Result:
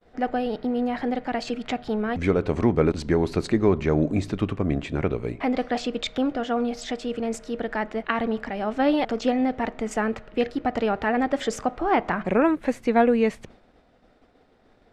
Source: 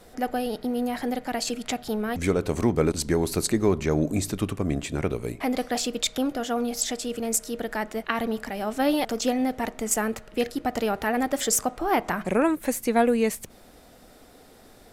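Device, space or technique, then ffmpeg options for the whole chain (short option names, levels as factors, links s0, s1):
hearing-loss simulation: -af "lowpass=3000,agate=range=0.0224:threshold=0.00631:ratio=3:detection=peak,volume=1.26"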